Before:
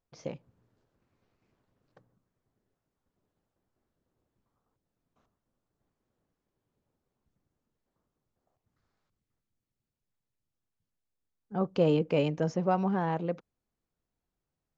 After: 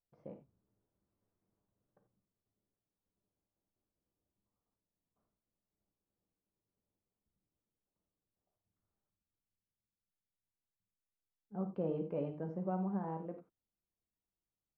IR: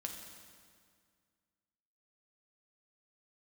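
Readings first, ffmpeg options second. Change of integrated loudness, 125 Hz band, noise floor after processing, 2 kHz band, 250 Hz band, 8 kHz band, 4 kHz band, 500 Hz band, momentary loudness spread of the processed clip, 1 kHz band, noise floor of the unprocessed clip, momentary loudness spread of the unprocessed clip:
-10.5 dB, -10.0 dB, under -85 dBFS, -20.0 dB, -9.0 dB, no reading, under -25 dB, -11.5 dB, 16 LU, -12.0 dB, under -85 dBFS, 16 LU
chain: -filter_complex "[0:a]lowpass=1100[s0];[1:a]atrim=start_sample=2205,atrim=end_sample=4410[s1];[s0][s1]afir=irnorm=-1:irlink=0,volume=0.376"

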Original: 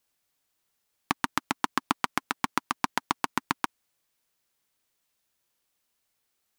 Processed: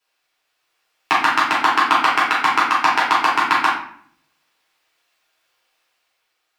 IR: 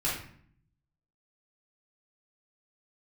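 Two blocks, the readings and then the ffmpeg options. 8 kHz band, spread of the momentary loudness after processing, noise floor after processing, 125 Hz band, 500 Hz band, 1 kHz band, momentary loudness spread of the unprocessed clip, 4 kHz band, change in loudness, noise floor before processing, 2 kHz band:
+5.0 dB, 3 LU, -72 dBFS, no reading, +11.5 dB, +15.0 dB, 3 LU, +13.0 dB, +14.5 dB, -78 dBFS, +16.0 dB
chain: -filter_complex "[0:a]acrossover=split=430 5100:gain=0.0794 1 0.251[s0][s1][s2];[s0][s1][s2]amix=inputs=3:normalize=0,dynaudnorm=f=130:g=11:m=1.58[s3];[1:a]atrim=start_sample=2205[s4];[s3][s4]afir=irnorm=-1:irlink=0,volume=1.68"

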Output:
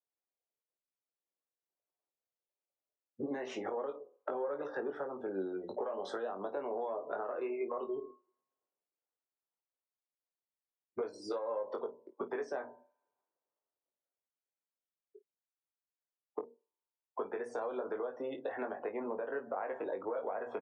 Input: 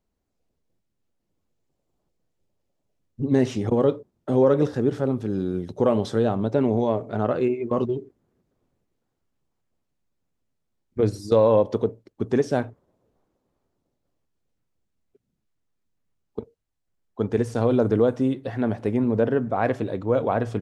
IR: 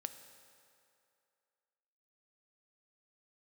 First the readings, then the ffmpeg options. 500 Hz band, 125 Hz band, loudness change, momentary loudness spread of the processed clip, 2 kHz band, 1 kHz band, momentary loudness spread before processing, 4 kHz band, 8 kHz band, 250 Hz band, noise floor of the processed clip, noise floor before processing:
-15.0 dB, under -35 dB, -16.5 dB, 7 LU, -9.5 dB, -11.0 dB, 11 LU, -13.5 dB, no reading, -21.0 dB, under -85 dBFS, -77 dBFS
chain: -filter_complex "[0:a]acrossover=split=180|610[s0][s1][s2];[s0]acompressor=threshold=0.00708:ratio=4[s3];[s1]acompressor=threshold=0.0631:ratio=4[s4];[s2]acompressor=threshold=0.0447:ratio=4[s5];[s3][s4][s5]amix=inputs=3:normalize=0,bandreject=f=60:t=h:w=6,bandreject=f=120:t=h:w=6,bandreject=f=180:t=h:w=6,bandreject=f=240:t=h:w=6,asoftclip=type=tanh:threshold=0.224,asplit=2[s6][s7];[1:a]atrim=start_sample=2205,asetrate=79380,aresample=44100[s8];[s7][s8]afir=irnorm=-1:irlink=0,volume=0.631[s9];[s6][s9]amix=inputs=2:normalize=0,afftdn=nr=28:nf=-44,acrossover=split=420 2100:gain=0.0708 1 0.126[s10][s11][s12];[s10][s11][s12]amix=inputs=3:normalize=0,alimiter=level_in=1.5:limit=0.0631:level=0:latency=1:release=469,volume=0.668,acompressor=threshold=0.00501:ratio=6,highpass=130,highshelf=f=3000:g=7,aecho=1:1:21|52:0.562|0.141,volume=2.82"

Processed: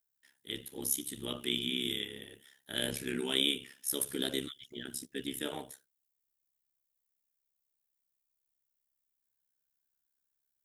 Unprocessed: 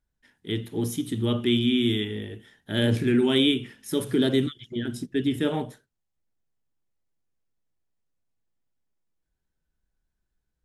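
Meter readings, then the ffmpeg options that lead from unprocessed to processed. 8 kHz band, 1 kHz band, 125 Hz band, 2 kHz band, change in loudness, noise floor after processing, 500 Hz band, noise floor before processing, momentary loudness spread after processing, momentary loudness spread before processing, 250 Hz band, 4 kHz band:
+5.0 dB, -10.0 dB, -20.5 dB, -7.0 dB, -9.5 dB, -84 dBFS, -13.5 dB, -80 dBFS, 13 LU, 11 LU, -16.0 dB, -4.0 dB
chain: -af "aemphasis=mode=production:type=riaa,tremolo=f=68:d=0.857,volume=0.501"

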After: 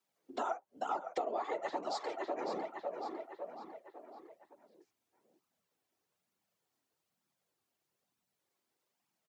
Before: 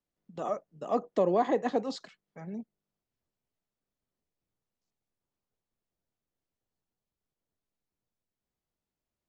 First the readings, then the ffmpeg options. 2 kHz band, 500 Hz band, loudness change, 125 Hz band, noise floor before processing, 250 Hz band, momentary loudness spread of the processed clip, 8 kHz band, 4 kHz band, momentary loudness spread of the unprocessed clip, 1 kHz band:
-1.5 dB, -8.0 dB, -9.0 dB, under -20 dB, under -85 dBFS, -12.0 dB, 16 LU, no reading, -1.5 dB, 17 LU, -3.0 dB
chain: -filter_complex "[0:a]afreqshift=120,lowshelf=f=390:g=-9.5,afftfilt=real='hypot(re,im)*cos(2*PI*random(0))':imag='hypot(re,im)*sin(2*PI*random(1))':win_size=512:overlap=0.75,asplit=2[s0][s1];[s1]adelay=553,lowpass=f=4400:p=1,volume=0.251,asplit=2[s2][s3];[s3]adelay=553,lowpass=f=4400:p=1,volume=0.51,asplit=2[s4][s5];[s5]adelay=553,lowpass=f=4400:p=1,volume=0.51,asplit=2[s6][s7];[s7]adelay=553,lowpass=f=4400:p=1,volume=0.51,asplit=2[s8][s9];[s9]adelay=553,lowpass=f=4400:p=1,volume=0.51[s10];[s0][s2][s4][s6][s8][s10]amix=inputs=6:normalize=0,aeval=exprs='0.1*(cos(1*acos(clip(val(0)/0.1,-1,1)))-cos(1*PI/2))+0.00178*(cos(2*acos(clip(val(0)/0.1,-1,1)))-cos(2*PI/2))':c=same,flanger=delay=0.7:depth=2.5:regen=-31:speed=1.1:shape=triangular,highpass=170,acompressor=threshold=0.00282:ratio=10,volume=7.5"

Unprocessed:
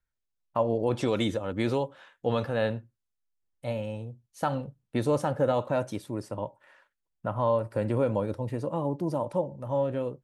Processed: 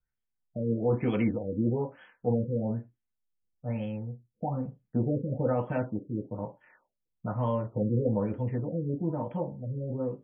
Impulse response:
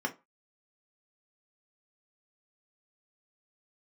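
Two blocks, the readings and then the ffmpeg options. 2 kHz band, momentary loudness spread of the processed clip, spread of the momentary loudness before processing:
-7.0 dB, 10 LU, 10 LU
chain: -filter_complex "[0:a]aexciter=amount=15.5:drive=9.3:freq=4700,asplit=2[s0][s1];[1:a]atrim=start_sample=2205,afade=t=out:st=0.16:d=0.01,atrim=end_sample=7497,lowpass=4100[s2];[s1][s2]afir=irnorm=-1:irlink=0,volume=0.447[s3];[s0][s3]amix=inputs=2:normalize=0,afftfilt=real='re*lt(b*sr/1024,540*pow(3400/540,0.5+0.5*sin(2*PI*1.1*pts/sr)))':imag='im*lt(b*sr/1024,540*pow(3400/540,0.5+0.5*sin(2*PI*1.1*pts/sr)))':win_size=1024:overlap=0.75,volume=0.841"

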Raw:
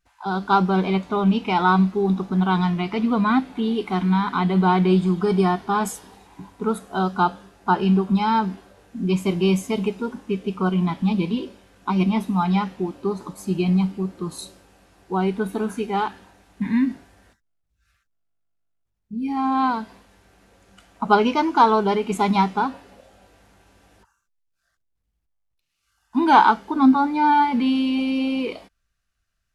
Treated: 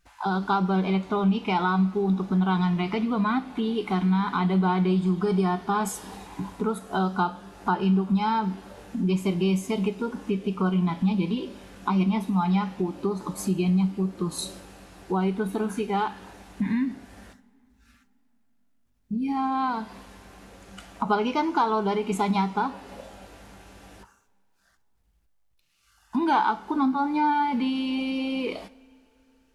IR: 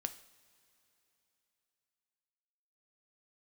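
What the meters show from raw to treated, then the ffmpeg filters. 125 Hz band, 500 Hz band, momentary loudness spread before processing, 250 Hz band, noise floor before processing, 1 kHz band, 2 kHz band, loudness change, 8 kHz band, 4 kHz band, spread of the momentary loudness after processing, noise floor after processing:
-2.5 dB, -4.5 dB, 12 LU, -3.5 dB, -75 dBFS, -6.0 dB, -5.0 dB, -4.5 dB, 0.0 dB, -4.0 dB, 10 LU, -65 dBFS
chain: -filter_complex "[0:a]acompressor=threshold=0.0178:ratio=2.5,asplit=2[s0][s1];[1:a]atrim=start_sample=2205,asetrate=43218,aresample=44100[s2];[s1][s2]afir=irnorm=-1:irlink=0,volume=1.41[s3];[s0][s3]amix=inputs=2:normalize=0"

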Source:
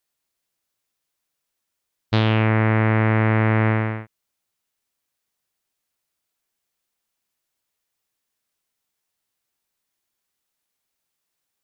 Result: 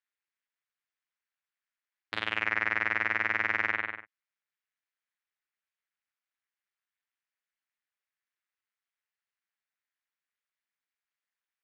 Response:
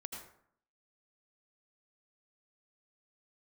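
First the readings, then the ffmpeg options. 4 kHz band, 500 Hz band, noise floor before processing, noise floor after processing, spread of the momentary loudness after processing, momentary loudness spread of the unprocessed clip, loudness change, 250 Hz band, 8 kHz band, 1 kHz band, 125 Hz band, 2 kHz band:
-7.0 dB, -19.0 dB, -80 dBFS, under -85 dBFS, 10 LU, 6 LU, -9.5 dB, -24.5 dB, no reading, -10.0 dB, -34.0 dB, -1.5 dB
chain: -af "aeval=exprs='0.531*(cos(1*acos(clip(val(0)/0.531,-1,1)))-cos(1*PI/2))+0.119*(cos(4*acos(clip(val(0)/0.531,-1,1)))-cos(4*PI/2))':c=same,tremolo=f=200:d=0.919,bandpass=f=1800:t=q:w=1.9:csg=0"

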